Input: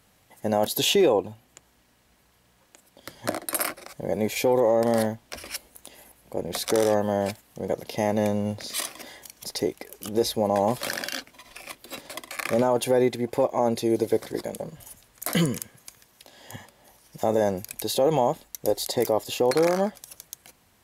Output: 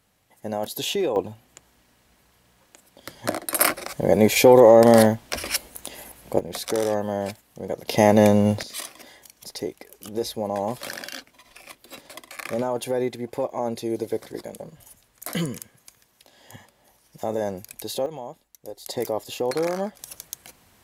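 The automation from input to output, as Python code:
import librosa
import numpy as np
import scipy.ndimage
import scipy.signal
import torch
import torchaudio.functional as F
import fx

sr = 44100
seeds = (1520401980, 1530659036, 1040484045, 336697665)

y = fx.gain(x, sr, db=fx.steps((0.0, -5.0), (1.16, 2.0), (3.61, 9.0), (6.39, -2.0), (7.88, 8.5), (8.63, -4.0), (18.06, -14.0), (18.86, -3.5), (19.99, 4.5)))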